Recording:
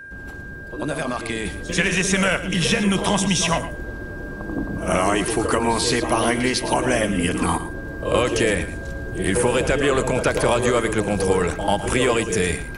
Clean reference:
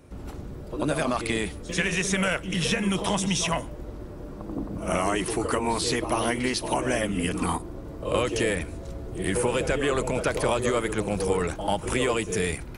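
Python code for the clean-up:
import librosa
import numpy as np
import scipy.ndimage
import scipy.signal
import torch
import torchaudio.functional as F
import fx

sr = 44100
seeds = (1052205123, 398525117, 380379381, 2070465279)

y = fx.notch(x, sr, hz=1600.0, q=30.0)
y = fx.fix_echo_inverse(y, sr, delay_ms=113, level_db=-13.5)
y = fx.fix_level(y, sr, at_s=1.45, step_db=-5.5)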